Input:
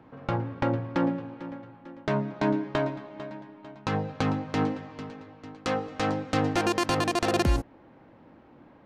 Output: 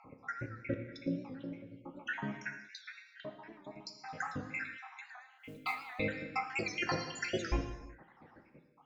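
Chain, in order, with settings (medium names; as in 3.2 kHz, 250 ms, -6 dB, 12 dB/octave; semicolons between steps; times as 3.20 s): random holes in the spectrogram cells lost 82%; in parallel at -3 dB: compression, threshold -42 dBFS, peak gain reduction 18.5 dB; on the sum: flange 1.8 Hz, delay 0.7 ms, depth 5.6 ms, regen +88%; rippled Chebyshev low-pass 7.2 kHz, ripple 9 dB; 5.33–5.76 s: modulation noise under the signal 23 dB; gated-style reverb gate 400 ms falling, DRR 4 dB; warped record 78 rpm, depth 100 cents; trim +6 dB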